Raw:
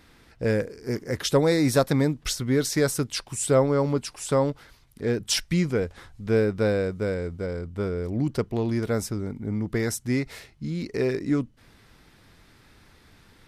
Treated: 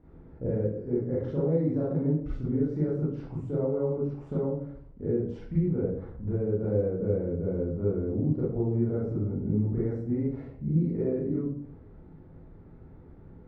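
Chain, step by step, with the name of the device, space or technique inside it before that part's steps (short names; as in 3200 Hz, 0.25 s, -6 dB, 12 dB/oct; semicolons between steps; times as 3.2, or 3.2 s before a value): television next door (compressor 5:1, threshold -31 dBFS, peak gain reduction 14.5 dB; LPF 530 Hz 12 dB/oct; reverb RT60 0.60 s, pre-delay 30 ms, DRR -9 dB); gain -2.5 dB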